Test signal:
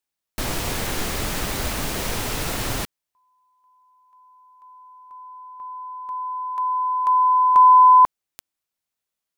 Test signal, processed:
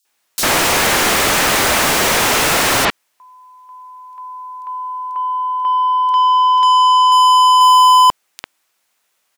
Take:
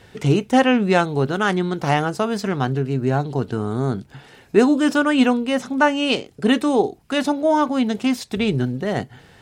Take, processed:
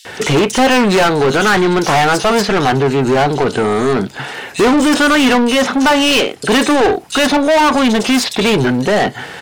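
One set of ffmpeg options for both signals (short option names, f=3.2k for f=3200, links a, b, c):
-filter_complex "[0:a]acrossover=split=4100[a][b];[a]adelay=50[c];[c][b]amix=inputs=2:normalize=0,asplit=2[d][e];[e]highpass=f=720:p=1,volume=31dB,asoftclip=type=tanh:threshold=-2.5dB[f];[d][f]amix=inputs=2:normalize=0,lowpass=f=6k:p=1,volume=-6dB,volume=-1.5dB"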